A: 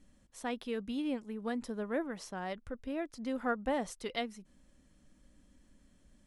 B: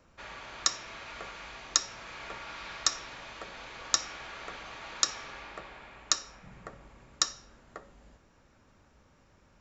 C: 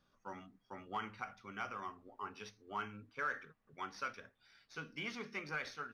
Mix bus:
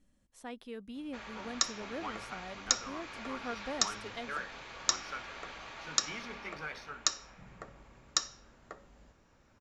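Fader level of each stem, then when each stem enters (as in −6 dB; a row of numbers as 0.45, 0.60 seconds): −7.0, −2.5, −1.0 decibels; 0.00, 0.95, 1.10 seconds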